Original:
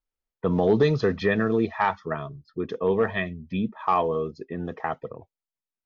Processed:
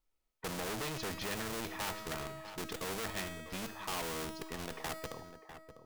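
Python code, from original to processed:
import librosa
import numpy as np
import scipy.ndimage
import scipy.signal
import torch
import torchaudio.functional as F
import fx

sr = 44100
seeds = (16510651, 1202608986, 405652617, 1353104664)

p1 = fx.high_shelf(x, sr, hz=3200.0, db=-2.5)
p2 = fx.notch(p1, sr, hz=1600.0, q=12.0)
p3 = fx.schmitt(p2, sr, flips_db=-28.0)
p4 = p2 + (p3 * 10.0 ** (-7.5 / 20.0))
p5 = fx.comb_fb(p4, sr, f0_hz=320.0, decay_s=0.99, harmonics='all', damping=0.0, mix_pct=80)
p6 = 10.0 ** (-35.0 / 20.0) * np.tanh(p5 / 10.0 ** (-35.0 / 20.0))
p7 = p6 + fx.echo_single(p6, sr, ms=649, db=-21.5, dry=0)
p8 = fx.spectral_comp(p7, sr, ratio=2.0)
y = p8 * 10.0 ** (10.0 / 20.0)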